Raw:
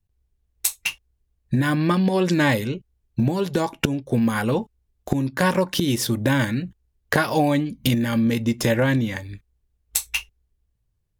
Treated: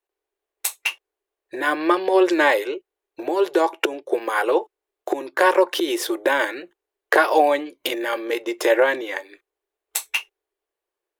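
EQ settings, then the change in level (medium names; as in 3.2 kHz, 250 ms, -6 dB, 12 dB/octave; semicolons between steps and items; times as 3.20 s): elliptic high-pass 350 Hz, stop band 40 dB; treble shelf 3.4 kHz -8 dB; peaking EQ 5.3 kHz -3.5 dB 0.93 oct; +6.5 dB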